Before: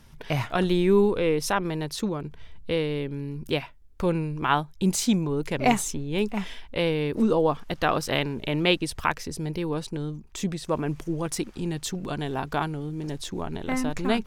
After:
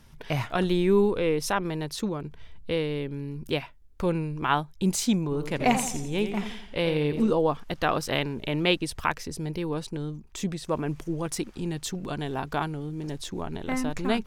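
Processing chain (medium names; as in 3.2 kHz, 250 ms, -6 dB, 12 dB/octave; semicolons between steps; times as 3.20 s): 5.23–7.30 s: modulated delay 85 ms, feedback 46%, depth 86 cents, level -9 dB; trim -1.5 dB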